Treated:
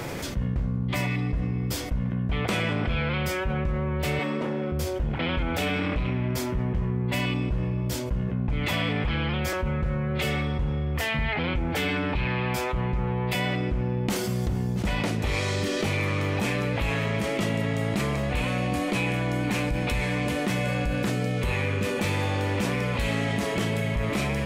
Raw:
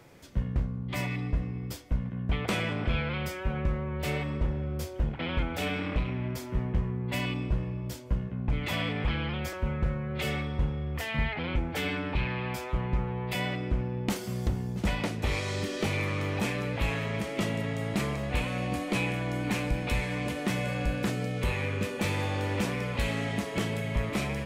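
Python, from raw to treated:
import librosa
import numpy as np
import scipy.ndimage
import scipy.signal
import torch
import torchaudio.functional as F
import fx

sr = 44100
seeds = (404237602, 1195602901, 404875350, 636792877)

y = fx.highpass(x, sr, hz=200.0, slope=24, at=(4.19, 4.72))
y = fx.env_flatten(y, sr, amount_pct=70)
y = F.gain(torch.from_numpy(y), -1.5).numpy()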